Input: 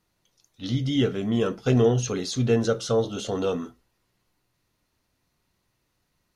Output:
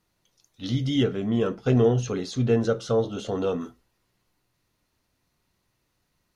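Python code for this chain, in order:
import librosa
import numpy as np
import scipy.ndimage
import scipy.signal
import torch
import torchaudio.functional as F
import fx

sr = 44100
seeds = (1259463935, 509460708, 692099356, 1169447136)

y = fx.high_shelf(x, sr, hz=3400.0, db=-9.0, at=(1.03, 3.61))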